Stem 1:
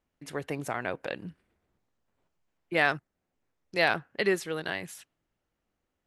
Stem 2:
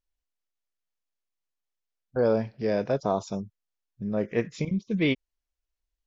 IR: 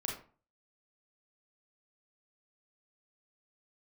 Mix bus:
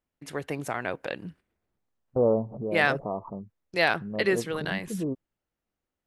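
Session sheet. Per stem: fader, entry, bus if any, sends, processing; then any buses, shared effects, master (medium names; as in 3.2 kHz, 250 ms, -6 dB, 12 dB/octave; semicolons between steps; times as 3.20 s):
+1.5 dB, 0.00 s, no send, gate -52 dBFS, range -7 dB
+1.0 dB, 0.00 s, no send, gate -48 dBFS, range -40 dB; steep low-pass 1.2 kHz 96 dB/octave; swell ahead of each attack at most 100 dB/s; auto duck -7 dB, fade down 0.45 s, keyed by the first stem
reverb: none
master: none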